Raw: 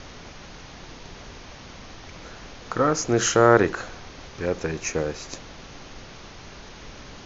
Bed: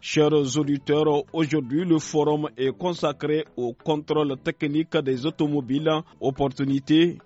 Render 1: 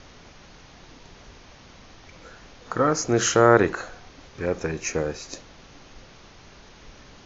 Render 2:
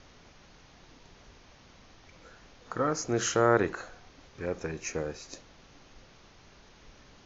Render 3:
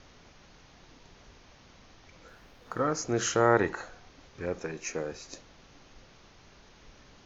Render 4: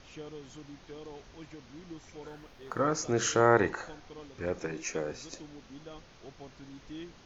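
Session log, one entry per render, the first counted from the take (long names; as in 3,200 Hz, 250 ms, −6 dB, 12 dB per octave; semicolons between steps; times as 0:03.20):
noise reduction from a noise print 6 dB
level −7.5 dB
0:02.28–0:02.81: running median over 5 samples; 0:03.40–0:03.86: hollow resonant body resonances 870/1,900 Hz, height 10 dB; 0:04.60–0:05.12: parametric band 80 Hz −14 dB 1.1 octaves
mix in bed −25.5 dB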